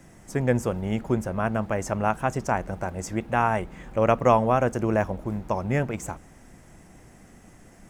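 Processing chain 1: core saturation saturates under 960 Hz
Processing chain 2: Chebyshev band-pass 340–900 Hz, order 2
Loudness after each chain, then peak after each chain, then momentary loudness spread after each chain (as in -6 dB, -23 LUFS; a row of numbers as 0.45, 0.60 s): -28.5, -28.5 LUFS; -5.5, -6.5 dBFS; 11, 14 LU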